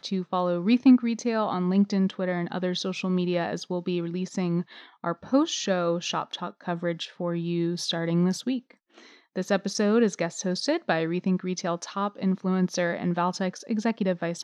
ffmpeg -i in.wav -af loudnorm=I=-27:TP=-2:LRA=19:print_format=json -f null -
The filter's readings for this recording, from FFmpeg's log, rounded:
"input_i" : "-26.9",
"input_tp" : "-8.5",
"input_lra" : "1.9",
"input_thresh" : "-37.1",